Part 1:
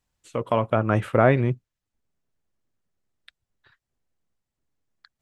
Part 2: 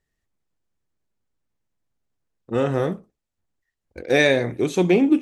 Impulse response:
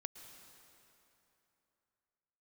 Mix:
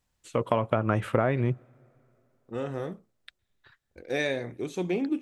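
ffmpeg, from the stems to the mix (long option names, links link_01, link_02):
-filter_complex "[0:a]acompressor=threshold=-21dB:ratio=12,volume=1dB,asplit=2[link_01][link_02];[link_02]volume=-19.5dB[link_03];[1:a]volume=-11.5dB[link_04];[2:a]atrim=start_sample=2205[link_05];[link_03][link_05]afir=irnorm=-1:irlink=0[link_06];[link_01][link_04][link_06]amix=inputs=3:normalize=0"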